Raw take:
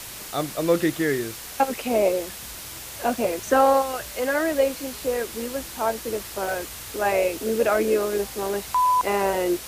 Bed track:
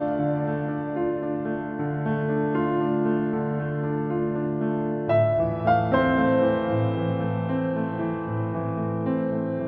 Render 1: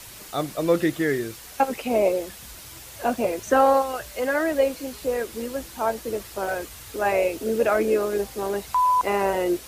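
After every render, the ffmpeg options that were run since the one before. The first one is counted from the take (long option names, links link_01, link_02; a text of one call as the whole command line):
ffmpeg -i in.wav -af "afftdn=noise_reduction=6:noise_floor=-38" out.wav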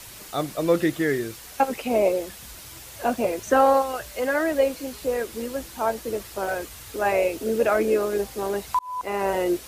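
ffmpeg -i in.wav -filter_complex "[0:a]asplit=2[link_01][link_02];[link_01]atrim=end=8.79,asetpts=PTS-STARTPTS,afade=type=out:start_time=8.786:duration=0.004:curve=hsin[link_03];[link_02]atrim=start=8.79,asetpts=PTS-STARTPTS,afade=type=in:duration=0.56[link_04];[link_03][link_04]concat=n=2:v=0:a=1" out.wav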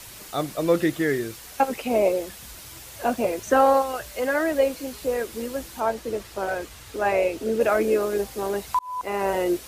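ffmpeg -i in.wav -filter_complex "[0:a]asettb=1/sr,asplit=3[link_01][link_02][link_03];[link_01]atrim=end=5.804[link_04];[link_02]atrim=start=5.8:end=7.61,asetpts=PTS-STARTPTS,afade=type=in:duration=0.004:curve=qsin,afade=type=out:start_time=1.806:duration=0.004:curve=qsin,highshelf=frequency=8800:gain=-9[link_05];[link_03]atrim=start=7.606[link_06];[link_04][link_05]acrossfade=duration=0.004:curve1=hsin:curve2=qsin[link_07];[link_07][link_06]acrossfade=duration=0.004:curve1=qsin:curve2=hsin" out.wav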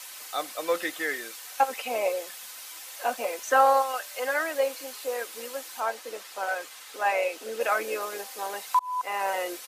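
ffmpeg -i in.wav -af "highpass=780,aecho=1:1:3.9:0.37" out.wav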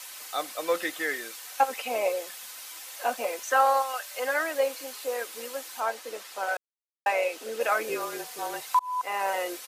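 ffmpeg -i in.wav -filter_complex "[0:a]asettb=1/sr,asplit=3[link_01][link_02][link_03];[link_01]atrim=end=3.444[link_04];[link_02]atrim=start=3.44:end=4.11,asetpts=PTS-STARTPTS,afade=type=in:duration=0.004:curve=qsin,afade=type=out:start_time=0.666:duration=0.004:curve=qsin,highpass=frequency=630:poles=1[link_05];[link_03]atrim=start=4.106[link_06];[link_04][link_05]acrossfade=duration=0.004:curve1=hsin:curve2=qsin[link_07];[link_07][link_06]acrossfade=duration=0.004:curve1=qsin:curve2=hsin,asettb=1/sr,asplit=3[link_08][link_09][link_10];[link_08]atrim=end=7.894[link_11];[link_09]atrim=start=7.89:end=8.61,asetpts=PTS-STARTPTS,afade=type=in:duration=0.004:curve=qsin,afade=type=out:start_time=0.716:duration=0.004:curve=qsin,afreqshift=-39[link_12];[link_10]atrim=start=8.606[link_13];[link_11][link_12]acrossfade=duration=0.004:curve1=hsin:curve2=qsin[link_14];[link_14][link_13]acrossfade=duration=0.004:curve1=qsin:curve2=hsin,asplit=3[link_15][link_16][link_17];[link_15]atrim=end=6.57,asetpts=PTS-STARTPTS,afade=type=out:start_time=6.566:duration=0.004:curve=hsin[link_18];[link_16]atrim=start=6.57:end=7.06,asetpts=PTS-STARTPTS,volume=0[link_19];[link_17]atrim=start=7.06,asetpts=PTS-STARTPTS,afade=type=in:duration=0.004:curve=hsin[link_20];[link_18][link_19][link_20]concat=n=3:v=0:a=1" out.wav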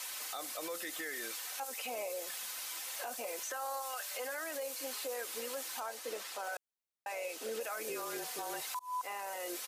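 ffmpeg -i in.wav -filter_complex "[0:a]acrossover=split=5000[link_01][link_02];[link_01]acompressor=threshold=-34dB:ratio=6[link_03];[link_03][link_02]amix=inputs=2:normalize=0,alimiter=level_in=7dB:limit=-24dB:level=0:latency=1:release=33,volume=-7dB" out.wav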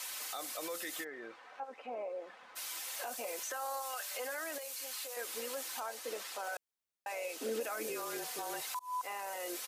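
ffmpeg -i in.wav -filter_complex "[0:a]asplit=3[link_01][link_02][link_03];[link_01]afade=type=out:start_time=1.03:duration=0.02[link_04];[link_02]lowpass=1300,afade=type=in:start_time=1.03:duration=0.02,afade=type=out:start_time=2.55:duration=0.02[link_05];[link_03]afade=type=in:start_time=2.55:duration=0.02[link_06];[link_04][link_05][link_06]amix=inputs=3:normalize=0,asettb=1/sr,asplit=3[link_07][link_08][link_09];[link_07]atrim=end=4.584[link_10];[link_08]atrim=start=4.58:end=5.17,asetpts=PTS-STARTPTS,afade=type=in:duration=0.004:curve=qsin,afade=type=out:start_time=0.586:duration=0.004:curve=qsin,highpass=frequency=1300:poles=1[link_11];[link_09]atrim=start=5.166[link_12];[link_10][link_11]acrossfade=duration=0.004:curve1=hsin:curve2=qsin[link_13];[link_13][link_12]acrossfade=duration=0.004:curve1=qsin:curve2=hsin,asettb=1/sr,asplit=3[link_14][link_15][link_16];[link_14]atrim=end=7.404[link_17];[link_15]atrim=start=7.4:end=7.87,asetpts=PTS-STARTPTS,afade=type=in:duration=0.004:curve=qsin,afade=type=out:start_time=0.466:duration=0.004:curve=qsin,equalizer=frequency=270:width=1.8:gain=11.5[link_18];[link_16]atrim=start=7.866[link_19];[link_17][link_18]acrossfade=duration=0.004:curve1=hsin:curve2=qsin[link_20];[link_20][link_19]acrossfade=duration=0.004:curve1=qsin:curve2=hsin" out.wav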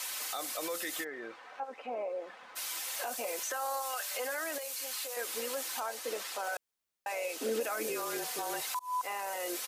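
ffmpeg -i in.wav -af "volume=4dB" out.wav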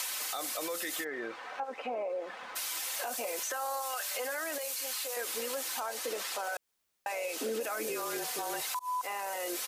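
ffmpeg -i in.wav -filter_complex "[0:a]asplit=2[link_01][link_02];[link_02]alimiter=level_in=8.5dB:limit=-24dB:level=0:latency=1:release=33,volume=-8.5dB,volume=3dB[link_03];[link_01][link_03]amix=inputs=2:normalize=0,acompressor=threshold=-36dB:ratio=2" out.wav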